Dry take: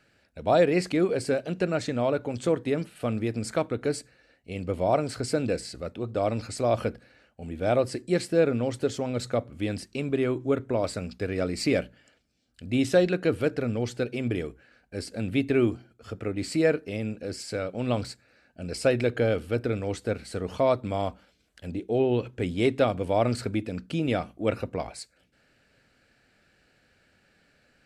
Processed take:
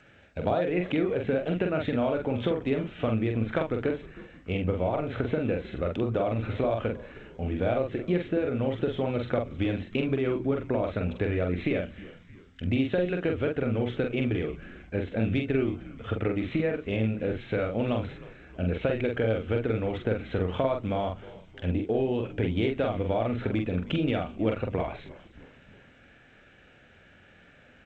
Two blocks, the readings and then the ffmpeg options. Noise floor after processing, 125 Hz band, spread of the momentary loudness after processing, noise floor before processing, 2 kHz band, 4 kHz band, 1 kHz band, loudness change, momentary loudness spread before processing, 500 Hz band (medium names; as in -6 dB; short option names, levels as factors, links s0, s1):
-56 dBFS, +1.5 dB, 7 LU, -66 dBFS, -1.0 dB, -3.5 dB, -2.5 dB, -1.5 dB, 12 LU, -2.0 dB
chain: -filter_complex "[0:a]equalizer=f=94:t=o:w=0.29:g=4,acompressor=threshold=0.0282:ratio=16,aresample=8000,aresample=44100,asplit=2[s0][s1];[s1]adelay=45,volume=0.631[s2];[s0][s2]amix=inputs=2:normalize=0,acontrast=35,asplit=2[s3][s4];[s4]asplit=4[s5][s6][s7][s8];[s5]adelay=313,afreqshift=-90,volume=0.112[s9];[s6]adelay=626,afreqshift=-180,volume=0.0603[s10];[s7]adelay=939,afreqshift=-270,volume=0.0327[s11];[s8]adelay=1252,afreqshift=-360,volume=0.0176[s12];[s9][s10][s11][s12]amix=inputs=4:normalize=0[s13];[s3][s13]amix=inputs=2:normalize=0,volume=1.19" -ar 16000 -c:a g722